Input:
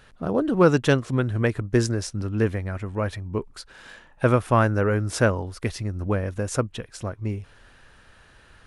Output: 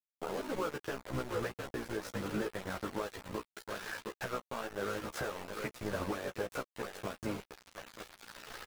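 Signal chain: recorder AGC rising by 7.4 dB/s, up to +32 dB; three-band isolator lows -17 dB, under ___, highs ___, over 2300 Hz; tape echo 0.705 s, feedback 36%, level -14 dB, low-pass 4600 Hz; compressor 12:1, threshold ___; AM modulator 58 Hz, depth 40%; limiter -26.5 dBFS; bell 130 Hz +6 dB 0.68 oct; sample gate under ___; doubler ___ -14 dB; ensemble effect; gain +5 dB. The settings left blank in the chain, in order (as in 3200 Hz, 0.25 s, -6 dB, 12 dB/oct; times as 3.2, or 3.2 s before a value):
360 Hz, -18 dB, -31 dBFS, -39.5 dBFS, 16 ms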